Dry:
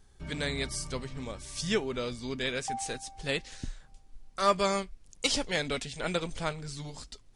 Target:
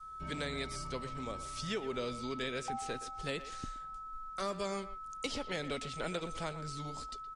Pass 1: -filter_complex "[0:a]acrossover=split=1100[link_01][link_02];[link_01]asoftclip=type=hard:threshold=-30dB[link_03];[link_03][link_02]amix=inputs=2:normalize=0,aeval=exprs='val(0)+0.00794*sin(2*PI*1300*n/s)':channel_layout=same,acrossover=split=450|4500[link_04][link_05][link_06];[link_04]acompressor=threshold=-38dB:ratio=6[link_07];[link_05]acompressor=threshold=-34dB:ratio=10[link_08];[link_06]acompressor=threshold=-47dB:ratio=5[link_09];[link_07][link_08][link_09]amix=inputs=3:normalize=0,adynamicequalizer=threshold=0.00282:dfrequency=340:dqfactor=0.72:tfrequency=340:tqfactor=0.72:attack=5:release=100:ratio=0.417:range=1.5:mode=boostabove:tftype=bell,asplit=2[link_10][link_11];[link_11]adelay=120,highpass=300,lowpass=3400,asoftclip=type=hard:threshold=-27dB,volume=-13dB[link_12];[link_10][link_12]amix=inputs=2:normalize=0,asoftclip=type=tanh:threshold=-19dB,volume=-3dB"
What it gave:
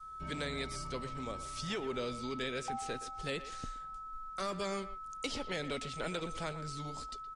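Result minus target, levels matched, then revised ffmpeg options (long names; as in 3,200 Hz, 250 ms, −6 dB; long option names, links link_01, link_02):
hard clipping: distortion +15 dB
-filter_complex "[0:a]acrossover=split=1100[link_01][link_02];[link_01]asoftclip=type=hard:threshold=-21.5dB[link_03];[link_03][link_02]amix=inputs=2:normalize=0,aeval=exprs='val(0)+0.00794*sin(2*PI*1300*n/s)':channel_layout=same,acrossover=split=450|4500[link_04][link_05][link_06];[link_04]acompressor=threshold=-38dB:ratio=6[link_07];[link_05]acompressor=threshold=-34dB:ratio=10[link_08];[link_06]acompressor=threshold=-47dB:ratio=5[link_09];[link_07][link_08][link_09]amix=inputs=3:normalize=0,adynamicequalizer=threshold=0.00282:dfrequency=340:dqfactor=0.72:tfrequency=340:tqfactor=0.72:attack=5:release=100:ratio=0.417:range=1.5:mode=boostabove:tftype=bell,asplit=2[link_10][link_11];[link_11]adelay=120,highpass=300,lowpass=3400,asoftclip=type=hard:threshold=-27dB,volume=-13dB[link_12];[link_10][link_12]amix=inputs=2:normalize=0,asoftclip=type=tanh:threshold=-19dB,volume=-3dB"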